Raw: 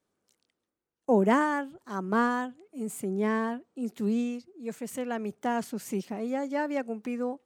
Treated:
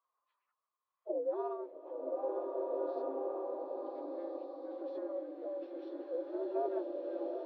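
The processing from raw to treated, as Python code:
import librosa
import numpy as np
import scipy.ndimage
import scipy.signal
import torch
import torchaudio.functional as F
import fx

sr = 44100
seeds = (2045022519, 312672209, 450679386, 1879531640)

p1 = fx.partial_stretch(x, sr, pct=80)
p2 = scipy.signal.sosfilt(scipy.signal.butter(4, 4500.0, 'lowpass', fs=sr, output='sos'), p1)
p3 = fx.peak_eq(p2, sr, hz=140.0, db=-15.0, octaves=1.3)
p4 = fx.hum_notches(p3, sr, base_hz=60, count=5)
p5 = fx.over_compress(p4, sr, threshold_db=-41.0, ratio=-1.0)
p6 = p4 + (p5 * librosa.db_to_amplitude(1.5))
p7 = fx.auto_wah(p6, sr, base_hz=510.0, top_hz=1100.0, q=14.0, full_db=-34.0, direction='down')
p8 = fx.pitch_keep_formants(p7, sr, semitones=5.5)
p9 = p8 + fx.echo_single(p8, sr, ms=971, db=-10.0, dry=0)
p10 = fx.rev_bloom(p9, sr, seeds[0], attack_ms=1600, drr_db=-2.0)
y = p10 * librosa.db_to_amplitude(3.0)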